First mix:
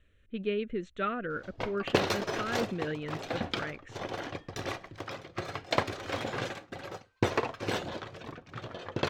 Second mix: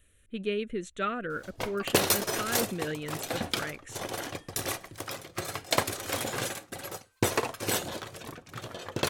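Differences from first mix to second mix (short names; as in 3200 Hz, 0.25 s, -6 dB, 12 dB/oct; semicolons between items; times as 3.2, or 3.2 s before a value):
background: add high shelf 11000 Hz -8 dB; master: remove air absorption 200 m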